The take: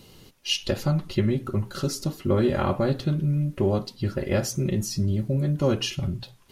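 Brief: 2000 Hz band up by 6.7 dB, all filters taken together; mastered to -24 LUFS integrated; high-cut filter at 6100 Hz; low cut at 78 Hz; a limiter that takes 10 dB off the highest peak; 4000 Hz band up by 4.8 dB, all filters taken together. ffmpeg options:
-af "highpass=78,lowpass=6.1k,equalizer=f=2k:t=o:g=8,equalizer=f=4k:t=o:g=3.5,volume=4dB,alimiter=limit=-14dB:level=0:latency=1"

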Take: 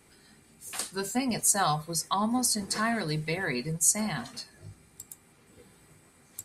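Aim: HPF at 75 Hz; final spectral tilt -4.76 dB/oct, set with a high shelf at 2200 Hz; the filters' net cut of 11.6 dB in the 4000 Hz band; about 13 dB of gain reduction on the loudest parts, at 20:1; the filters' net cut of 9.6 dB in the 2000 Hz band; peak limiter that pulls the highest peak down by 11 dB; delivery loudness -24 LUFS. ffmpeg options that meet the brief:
-af "highpass=75,equalizer=f=2k:t=o:g=-7,highshelf=f=2.2k:g=-8.5,equalizer=f=4k:t=o:g=-4.5,acompressor=threshold=-37dB:ratio=20,volume=22.5dB,alimiter=limit=-15dB:level=0:latency=1"

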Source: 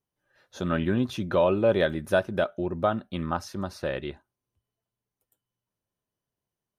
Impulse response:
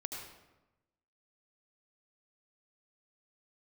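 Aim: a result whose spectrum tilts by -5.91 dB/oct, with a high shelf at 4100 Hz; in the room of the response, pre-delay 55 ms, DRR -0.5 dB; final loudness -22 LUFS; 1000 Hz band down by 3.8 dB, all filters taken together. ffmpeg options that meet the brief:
-filter_complex "[0:a]equalizer=f=1k:t=o:g=-5,highshelf=f=4.1k:g=-3.5,asplit=2[a][b];[1:a]atrim=start_sample=2205,adelay=55[c];[b][c]afir=irnorm=-1:irlink=0,volume=0.5dB[d];[a][d]amix=inputs=2:normalize=0,volume=3dB"

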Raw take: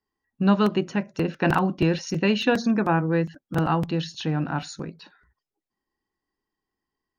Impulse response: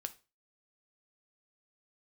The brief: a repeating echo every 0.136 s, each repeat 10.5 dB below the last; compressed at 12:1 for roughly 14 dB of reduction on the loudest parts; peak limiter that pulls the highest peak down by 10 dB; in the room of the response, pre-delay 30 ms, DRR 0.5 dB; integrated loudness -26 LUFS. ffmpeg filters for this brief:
-filter_complex "[0:a]acompressor=threshold=-30dB:ratio=12,alimiter=level_in=5.5dB:limit=-24dB:level=0:latency=1,volume=-5.5dB,aecho=1:1:136|272|408:0.299|0.0896|0.0269,asplit=2[a][b];[1:a]atrim=start_sample=2205,adelay=30[c];[b][c]afir=irnorm=-1:irlink=0,volume=1.5dB[d];[a][d]amix=inputs=2:normalize=0,volume=9.5dB"

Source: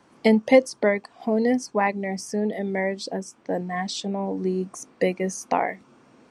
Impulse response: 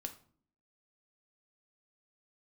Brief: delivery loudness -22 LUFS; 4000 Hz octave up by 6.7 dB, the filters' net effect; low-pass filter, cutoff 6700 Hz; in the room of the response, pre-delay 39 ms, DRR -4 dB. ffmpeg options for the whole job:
-filter_complex "[0:a]lowpass=6.7k,equalizer=f=4k:t=o:g=9,asplit=2[a][b];[1:a]atrim=start_sample=2205,adelay=39[c];[b][c]afir=irnorm=-1:irlink=0,volume=6.5dB[d];[a][d]amix=inputs=2:normalize=0,volume=-3.5dB"

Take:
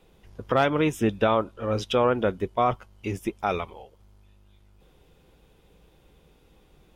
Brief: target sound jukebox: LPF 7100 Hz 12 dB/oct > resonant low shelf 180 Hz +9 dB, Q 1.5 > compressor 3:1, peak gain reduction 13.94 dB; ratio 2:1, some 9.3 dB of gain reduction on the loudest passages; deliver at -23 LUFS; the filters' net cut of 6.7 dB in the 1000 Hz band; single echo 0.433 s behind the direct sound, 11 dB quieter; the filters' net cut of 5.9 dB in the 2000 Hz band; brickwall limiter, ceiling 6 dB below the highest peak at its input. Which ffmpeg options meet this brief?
-af "equalizer=f=1k:t=o:g=-8,equalizer=f=2k:t=o:g=-5,acompressor=threshold=-37dB:ratio=2,alimiter=level_in=2.5dB:limit=-24dB:level=0:latency=1,volume=-2.5dB,lowpass=7.1k,lowshelf=f=180:t=q:w=1.5:g=9,aecho=1:1:433:0.282,acompressor=threshold=-44dB:ratio=3,volume=24.5dB"

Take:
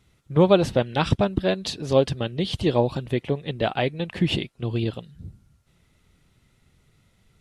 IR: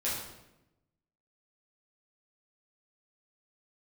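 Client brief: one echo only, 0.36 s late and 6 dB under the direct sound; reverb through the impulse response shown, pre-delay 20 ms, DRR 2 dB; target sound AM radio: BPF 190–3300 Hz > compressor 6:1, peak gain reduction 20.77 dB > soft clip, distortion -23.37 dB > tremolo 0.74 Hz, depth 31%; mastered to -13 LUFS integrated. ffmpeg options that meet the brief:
-filter_complex "[0:a]aecho=1:1:360:0.501,asplit=2[a][b];[1:a]atrim=start_sample=2205,adelay=20[c];[b][c]afir=irnorm=-1:irlink=0,volume=-8dB[d];[a][d]amix=inputs=2:normalize=0,highpass=190,lowpass=3.3k,acompressor=threshold=-32dB:ratio=6,asoftclip=threshold=-23dB,tremolo=f=0.74:d=0.31,volume=24.5dB"

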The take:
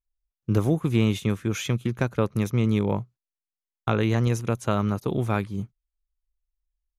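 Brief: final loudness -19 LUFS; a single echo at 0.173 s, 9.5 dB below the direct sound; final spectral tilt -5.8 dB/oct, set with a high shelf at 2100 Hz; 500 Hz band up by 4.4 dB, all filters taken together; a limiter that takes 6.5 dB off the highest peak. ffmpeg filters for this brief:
-af "equalizer=f=500:t=o:g=5,highshelf=f=2.1k:g=7,alimiter=limit=-13dB:level=0:latency=1,aecho=1:1:173:0.335,volume=6dB"

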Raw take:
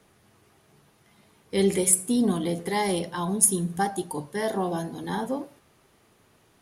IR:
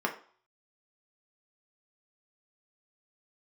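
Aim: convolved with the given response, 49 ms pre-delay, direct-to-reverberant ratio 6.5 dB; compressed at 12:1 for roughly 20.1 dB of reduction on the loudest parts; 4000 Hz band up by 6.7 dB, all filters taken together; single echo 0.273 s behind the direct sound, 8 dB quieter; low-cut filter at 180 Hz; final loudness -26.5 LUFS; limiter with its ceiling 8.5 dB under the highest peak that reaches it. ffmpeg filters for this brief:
-filter_complex "[0:a]highpass=180,equalizer=f=4k:t=o:g=8.5,acompressor=threshold=-34dB:ratio=12,alimiter=level_in=5dB:limit=-24dB:level=0:latency=1,volume=-5dB,aecho=1:1:273:0.398,asplit=2[a][b];[1:a]atrim=start_sample=2205,adelay=49[c];[b][c]afir=irnorm=-1:irlink=0,volume=-15dB[d];[a][d]amix=inputs=2:normalize=0,volume=12dB"

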